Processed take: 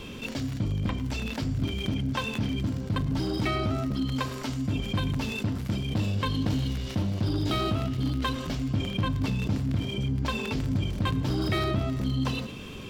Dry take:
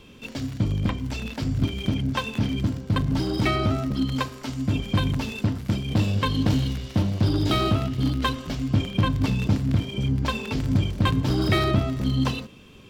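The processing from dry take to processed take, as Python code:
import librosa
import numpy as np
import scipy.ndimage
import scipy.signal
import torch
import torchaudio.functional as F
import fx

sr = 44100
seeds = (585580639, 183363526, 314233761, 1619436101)

y = x + 10.0 ** (-22.0 / 20.0) * np.pad(x, (int(107 * sr / 1000.0), 0))[:len(x)]
y = fx.env_flatten(y, sr, amount_pct=50)
y = y * librosa.db_to_amplitude(-7.5)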